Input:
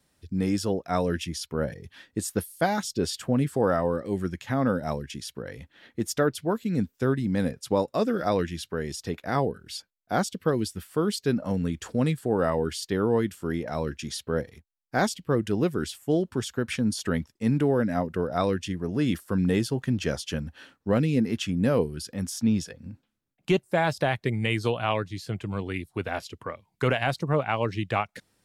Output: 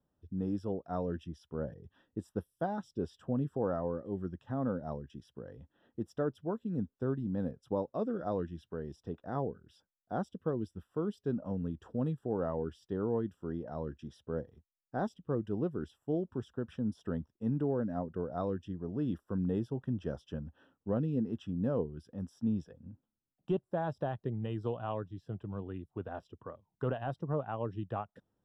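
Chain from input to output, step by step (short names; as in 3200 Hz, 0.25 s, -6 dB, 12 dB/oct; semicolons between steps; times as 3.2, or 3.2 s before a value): running mean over 20 samples; gain -8.5 dB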